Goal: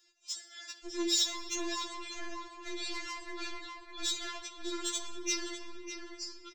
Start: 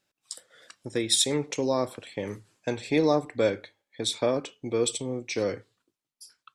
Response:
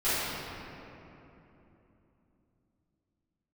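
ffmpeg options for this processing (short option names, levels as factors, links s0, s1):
-filter_complex "[0:a]tiltshelf=f=1400:g=3,acompressor=threshold=0.00282:ratio=1.5,aresample=16000,asoftclip=type=hard:threshold=0.0133,aresample=44100,crystalizer=i=8.5:c=0,asoftclip=type=tanh:threshold=0.0891,asplit=2[s0][s1];[s1]adelay=602,lowpass=f=1900:p=1,volume=0.668,asplit=2[s2][s3];[s3]adelay=602,lowpass=f=1900:p=1,volume=0.32,asplit=2[s4][s5];[s5]adelay=602,lowpass=f=1900:p=1,volume=0.32,asplit=2[s6][s7];[s7]adelay=602,lowpass=f=1900:p=1,volume=0.32[s8];[s0][s2][s4][s6][s8]amix=inputs=5:normalize=0,asplit=2[s9][s10];[1:a]atrim=start_sample=2205[s11];[s10][s11]afir=irnorm=-1:irlink=0,volume=0.0944[s12];[s9][s12]amix=inputs=2:normalize=0,afftfilt=real='re*4*eq(mod(b,16),0)':imag='im*4*eq(mod(b,16),0)':win_size=2048:overlap=0.75"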